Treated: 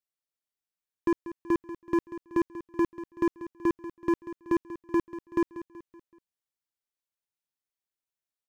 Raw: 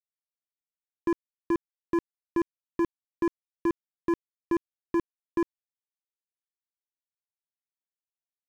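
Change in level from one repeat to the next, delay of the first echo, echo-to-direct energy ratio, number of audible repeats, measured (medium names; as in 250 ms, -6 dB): -7.0 dB, 189 ms, -13.0 dB, 4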